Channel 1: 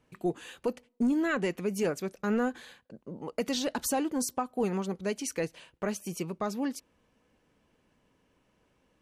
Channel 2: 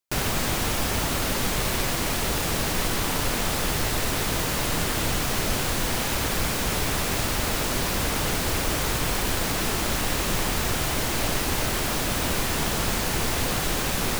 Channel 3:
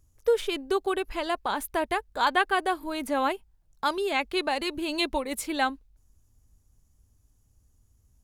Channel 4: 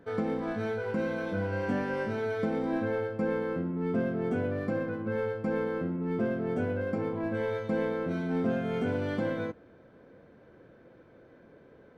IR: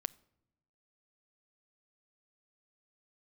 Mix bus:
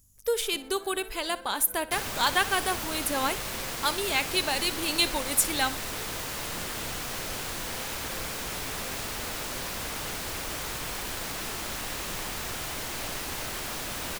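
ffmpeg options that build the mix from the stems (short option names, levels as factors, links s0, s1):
-filter_complex "[1:a]adelay=1800,volume=0.447[s0];[2:a]lowshelf=f=330:g=9,aeval=exprs='val(0)+0.00126*(sin(2*PI*50*n/s)+sin(2*PI*2*50*n/s)/2+sin(2*PI*3*50*n/s)/3+sin(2*PI*4*50*n/s)/4+sin(2*PI*5*50*n/s)/5)':c=same,crystalizer=i=5:c=0,volume=0.596,asplit=2[s1][s2];[s2]volume=0.141[s3];[3:a]highpass=f=330:p=1,adelay=350,volume=0.237[s4];[s3]aecho=0:1:61|122|183|244|305:1|0.32|0.102|0.0328|0.0105[s5];[s0][s1][s4][s5]amix=inputs=4:normalize=0,lowshelf=f=470:g=-7"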